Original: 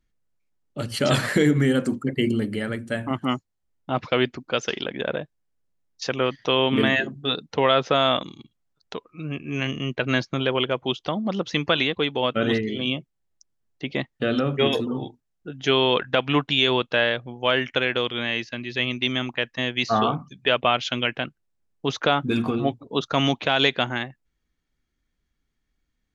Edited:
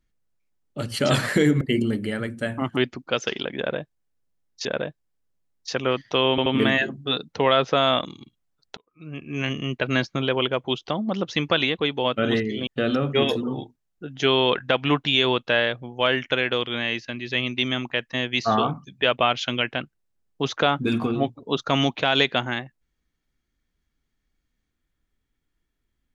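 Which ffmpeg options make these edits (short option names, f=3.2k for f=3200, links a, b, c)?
-filter_complex "[0:a]asplit=8[a][b][c][d][e][f][g][h];[a]atrim=end=1.612[i];[b]atrim=start=2.098:end=3.262[j];[c]atrim=start=4.178:end=6.062[k];[d]atrim=start=4.988:end=6.722[l];[e]atrim=start=6.638:end=6.722[m];[f]atrim=start=6.638:end=8.95,asetpts=PTS-STARTPTS,afade=t=out:st=2.308:d=0.004:c=hsin[n];[g]atrim=start=8.95:end=12.852,asetpts=PTS-STARTPTS,afade=t=in:d=0.65[o];[h]atrim=start=14.108[p];[i][j]acrossfade=d=0.004:c1=hsin:c2=hsin[q];[q][k]acrossfade=d=0.004:c1=hsin:c2=hsin[r];[r][l]acrossfade=d=0.004:c1=hsin:c2=hsin[s];[s][m]acrossfade=d=0.004:c1=hsin:c2=hsin[t];[n][o]concat=n=2:v=0:a=1[u];[t][u]acrossfade=d=0.004:c1=hsin:c2=hsin[v];[v][p]acrossfade=d=0.004:c1=hsin:c2=hsin"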